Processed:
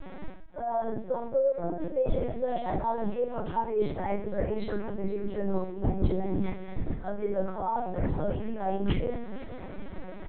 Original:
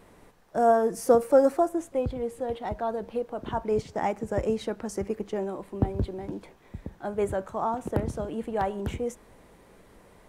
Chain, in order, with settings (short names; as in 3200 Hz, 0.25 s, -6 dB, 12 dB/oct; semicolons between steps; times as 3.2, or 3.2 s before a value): comb 5.4 ms, depth 58%; reverse; compressor 12:1, threshold -35 dBFS, peak gain reduction 24 dB; reverse; feedback echo 0.473 s, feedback 46%, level -16 dB; shoebox room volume 41 m³, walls mixed, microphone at 2.5 m; LPC vocoder at 8 kHz pitch kept; gain -4.5 dB